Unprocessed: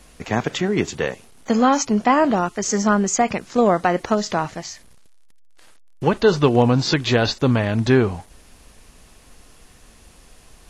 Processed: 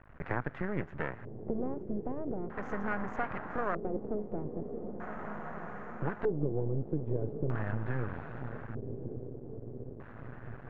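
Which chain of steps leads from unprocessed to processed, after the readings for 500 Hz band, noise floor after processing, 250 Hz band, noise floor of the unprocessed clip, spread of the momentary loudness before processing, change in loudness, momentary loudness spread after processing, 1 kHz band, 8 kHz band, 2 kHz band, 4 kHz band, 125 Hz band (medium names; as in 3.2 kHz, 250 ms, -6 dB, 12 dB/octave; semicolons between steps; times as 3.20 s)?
-16.5 dB, -48 dBFS, -17.0 dB, -50 dBFS, 9 LU, -18.0 dB, 10 LU, -18.5 dB, under -40 dB, -15.0 dB, under -35 dB, -12.5 dB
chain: median filter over 9 samples; graphic EQ 125/250/4000 Hz +11/-4/-5 dB; compression 3:1, threshold -28 dBFS, peak gain reduction 16 dB; echo that smears into a reverb 1090 ms, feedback 65%, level -9.5 dB; half-wave rectifier; LFO low-pass square 0.4 Hz 420–1600 Hz; trim -3.5 dB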